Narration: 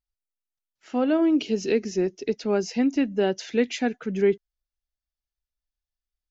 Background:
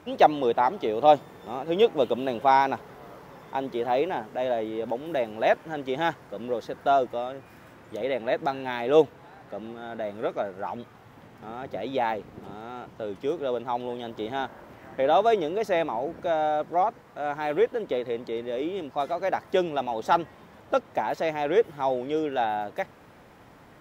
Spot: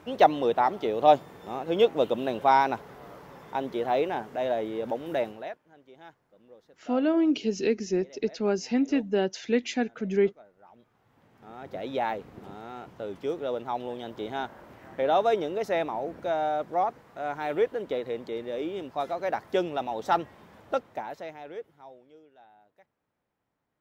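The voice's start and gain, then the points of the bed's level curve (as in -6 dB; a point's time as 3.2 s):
5.95 s, -2.5 dB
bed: 5.27 s -1 dB
5.59 s -23.5 dB
10.59 s -23.5 dB
11.8 s -2.5 dB
20.67 s -2.5 dB
22.32 s -30 dB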